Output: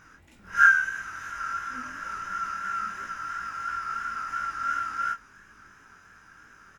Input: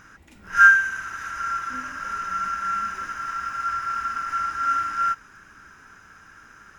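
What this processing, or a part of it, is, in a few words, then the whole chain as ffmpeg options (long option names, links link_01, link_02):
double-tracked vocal: -filter_complex "[0:a]asplit=2[link_01][link_02];[link_02]adelay=23,volume=-13dB[link_03];[link_01][link_03]amix=inputs=2:normalize=0,flanger=delay=17.5:depth=5.8:speed=2.9,volume=-1.5dB"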